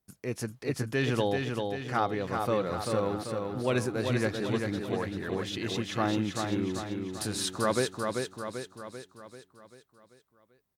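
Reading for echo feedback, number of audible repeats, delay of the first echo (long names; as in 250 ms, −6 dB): 53%, 6, 390 ms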